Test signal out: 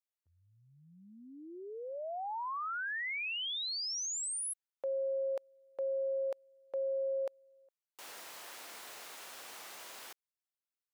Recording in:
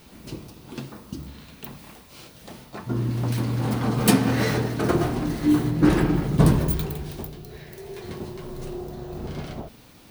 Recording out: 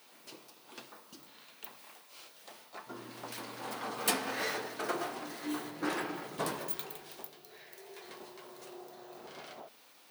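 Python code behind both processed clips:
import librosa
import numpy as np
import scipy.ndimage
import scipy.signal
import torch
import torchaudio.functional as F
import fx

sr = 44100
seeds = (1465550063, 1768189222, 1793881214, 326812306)

y = scipy.signal.sosfilt(scipy.signal.butter(2, 600.0, 'highpass', fs=sr, output='sos'), x)
y = y * 10.0 ** (-6.5 / 20.0)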